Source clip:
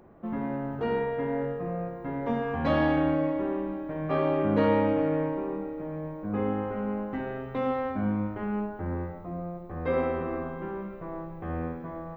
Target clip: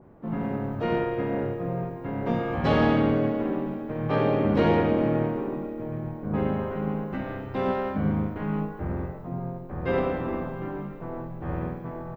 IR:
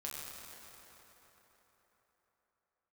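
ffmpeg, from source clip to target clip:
-filter_complex "[0:a]equalizer=f=150:w=2.3:g=4,aeval=exprs='0.266*(cos(1*acos(clip(val(0)/0.266,-1,1)))-cos(1*PI/2))+0.00531*(cos(7*acos(clip(val(0)/0.266,-1,1)))-cos(7*PI/2))':c=same,asplit=4[s0][s1][s2][s3];[s1]asetrate=33038,aresample=44100,atempo=1.33484,volume=0.794[s4];[s2]asetrate=35002,aresample=44100,atempo=1.25992,volume=0.178[s5];[s3]asetrate=58866,aresample=44100,atempo=0.749154,volume=0.224[s6];[s0][s4][s5][s6]amix=inputs=4:normalize=0,adynamicequalizer=threshold=0.00562:dfrequency=2400:dqfactor=0.7:tfrequency=2400:tqfactor=0.7:attack=5:release=100:ratio=0.375:range=3:mode=boostabove:tftype=highshelf"

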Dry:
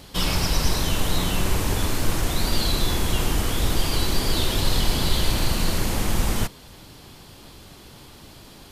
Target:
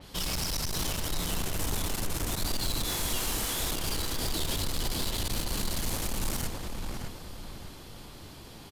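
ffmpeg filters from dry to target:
-filter_complex "[0:a]asettb=1/sr,asplit=3[s0][s1][s2];[s0]atrim=end=2.844[s3];[s1]atrim=start=2.84:end=3.71,asetpts=PTS-STARTPTS,afade=t=in:d=0.004:c=qsin,afade=t=out:st=0.866:d=0.004:c=qsin,lowshelf=f=310:g=-11.5[s4];[s2]atrim=start=3.706[s5];[s3][s4]acrossfade=d=0.004:c1=hsin:c2=qsin[s6];[s6][s5]acrossfade=d=0.004:c1=qsin:c2=hsin,alimiter=limit=0.211:level=0:latency=1:release=92,asoftclip=type=tanh:threshold=0.0562,asplit=2[s7][s8];[s8]adelay=608,lowpass=f=2600:p=1,volume=0.708,asplit=2[s9][s10];[s10]adelay=608,lowpass=f=2600:p=1,volume=0.42,asplit=2[s11][s12];[s12]adelay=608,lowpass=f=2600:p=1,volume=0.42,asplit=2[s13][s14];[s14]adelay=608,lowpass=f=2600:p=1,volume=0.42,asplit=2[s15][s16];[s16]adelay=608,lowpass=f=2600:p=1,volume=0.42[s17];[s7][s9][s11][s13][s15][s17]amix=inputs=6:normalize=0,adynamicequalizer=threshold=0.00398:dfrequency=4400:dqfactor=0.7:tfrequency=4400:tqfactor=0.7:attack=5:release=100:ratio=0.375:range=3.5:mode=boostabove:tftype=highshelf,volume=0.631"

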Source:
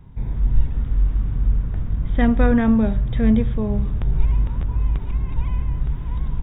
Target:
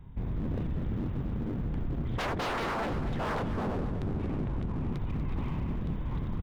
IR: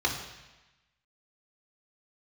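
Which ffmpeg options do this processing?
-filter_complex "[0:a]asettb=1/sr,asplit=3[s0][s1][s2];[s0]atrim=end=2.144[s3];[s1]atrim=start=2.14:end=4.92,asetpts=PTS-STARTPTS,afade=t=in:d=0.004:c=qsin,afade=t=out:st=2.776:d=0.004:c=qsin,lowpass=f=2500:p=1[s4];[s2]atrim=start=4.916[s5];[s3][s4]acrossfade=d=0.004:c1=hsin:c2=qsin[s6];[s6][s5]acrossfade=d=0.004:c1=qsin:c2=hsin,aeval=exprs='0.0708*(abs(mod(val(0)/0.0708+3,4)-2)-1)':c=same,aecho=1:1:240|480|720|960|1200:0.282|0.132|0.0623|0.0293|0.0138,volume=0.631"

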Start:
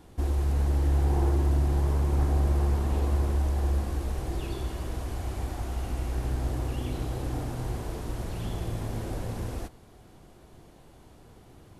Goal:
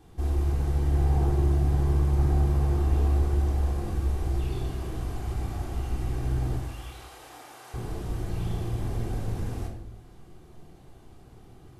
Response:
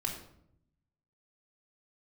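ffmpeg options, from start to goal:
-filter_complex "[0:a]asettb=1/sr,asplit=3[s0][s1][s2];[s0]atrim=end=6.574[s3];[s1]atrim=start=6.57:end=7.74,asetpts=PTS-STARTPTS,afade=t=in:d=0.004:c=qsin,afade=t=out:st=1.166:d=0.004:c=qsin,highpass=890[s4];[s2]atrim=start=7.736[s5];[s3][s4]acrossfade=d=0.004:c1=hsin:c2=qsin[s6];[s6][s5]acrossfade=d=0.004:c1=qsin:c2=hsin[s7];[1:a]atrim=start_sample=2205[s8];[s7][s8]afir=irnorm=-1:irlink=0,volume=0.631"

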